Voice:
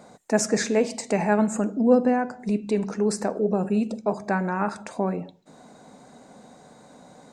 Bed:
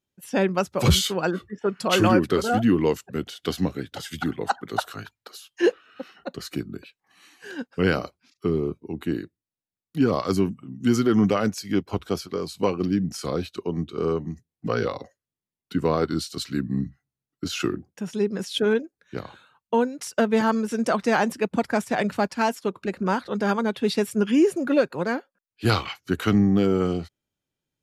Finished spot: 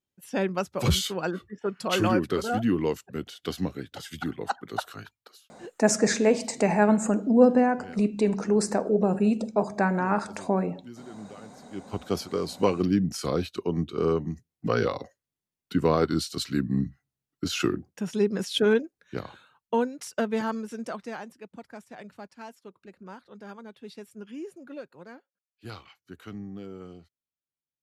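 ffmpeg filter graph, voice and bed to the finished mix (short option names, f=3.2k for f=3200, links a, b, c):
-filter_complex "[0:a]adelay=5500,volume=0.5dB[a];[1:a]volume=19dB,afade=t=out:st=5.13:d=0.39:silence=0.112202,afade=t=in:st=11.7:d=0.52:silence=0.0630957,afade=t=out:st=18.89:d=2.4:silence=0.1[b];[a][b]amix=inputs=2:normalize=0"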